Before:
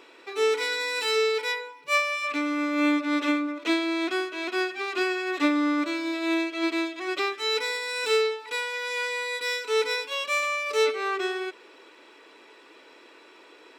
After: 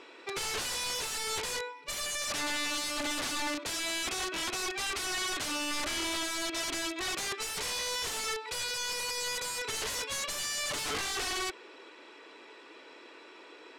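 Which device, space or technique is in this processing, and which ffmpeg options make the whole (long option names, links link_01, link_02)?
overflowing digital effects unit: -af "aeval=exprs='(mod(25.1*val(0)+1,2)-1)/25.1':channel_layout=same,lowpass=8800"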